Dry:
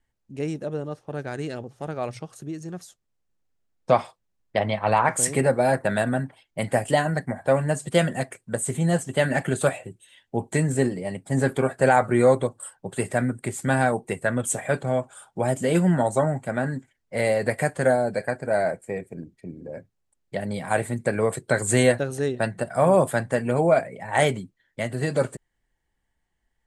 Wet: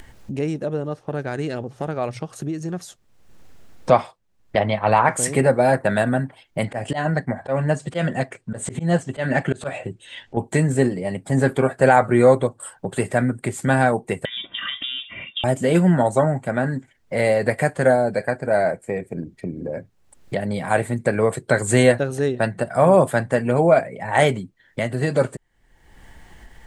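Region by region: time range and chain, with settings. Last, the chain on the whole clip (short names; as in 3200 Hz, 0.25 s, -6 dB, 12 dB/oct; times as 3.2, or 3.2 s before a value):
6.65–10.37 auto swell 0.125 s + LPF 6400 Hz
14.25–15.44 comb 2.4 ms, depth 78% + compressor 16:1, threshold -31 dBFS + inverted band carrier 3600 Hz
whole clip: high shelf 5500 Hz -6 dB; upward compressor, threshold -25 dBFS; gain +4 dB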